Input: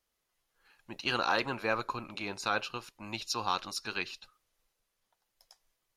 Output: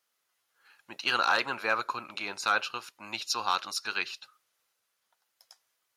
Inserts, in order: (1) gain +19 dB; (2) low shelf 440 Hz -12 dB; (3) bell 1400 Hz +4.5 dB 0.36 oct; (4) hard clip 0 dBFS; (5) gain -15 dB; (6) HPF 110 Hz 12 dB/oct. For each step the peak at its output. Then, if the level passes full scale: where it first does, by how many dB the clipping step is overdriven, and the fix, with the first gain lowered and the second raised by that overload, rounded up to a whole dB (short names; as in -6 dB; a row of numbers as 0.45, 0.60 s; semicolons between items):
+3.5, +3.0, +4.0, 0.0, -15.0, -13.5 dBFS; step 1, 4.0 dB; step 1 +15 dB, step 5 -11 dB